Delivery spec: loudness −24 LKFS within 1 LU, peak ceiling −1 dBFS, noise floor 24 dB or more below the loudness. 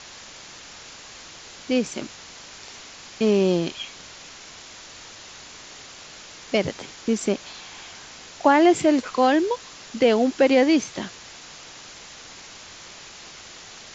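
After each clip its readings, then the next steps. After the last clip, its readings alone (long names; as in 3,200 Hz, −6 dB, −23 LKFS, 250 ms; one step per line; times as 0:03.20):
background noise floor −43 dBFS; target noise floor −46 dBFS; integrated loudness −21.5 LKFS; sample peak −5.0 dBFS; target loudness −24.0 LKFS
→ broadband denoise 6 dB, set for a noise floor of −43 dBFS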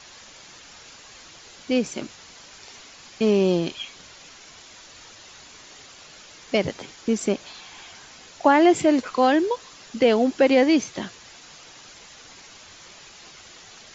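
background noise floor −47 dBFS; integrated loudness −21.5 LKFS; sample peak −5.0 dBFS; target loudness −24.0 LKFS
→ level −2.5 dB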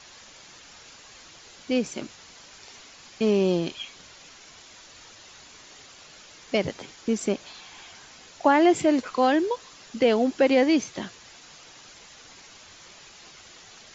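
integrated loudness −24.0 LKFS; sample peak −7.5 dBFS; background noise floor −49 dBFS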